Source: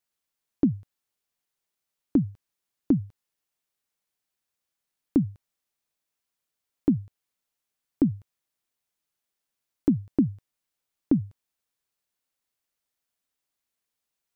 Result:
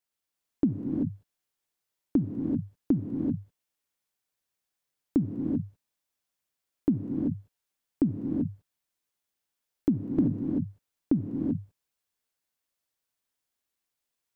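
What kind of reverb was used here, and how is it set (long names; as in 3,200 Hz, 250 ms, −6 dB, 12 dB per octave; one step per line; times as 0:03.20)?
reverb whose tail is shaped and stops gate 410 ms rising, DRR 1 dB
level −3 dB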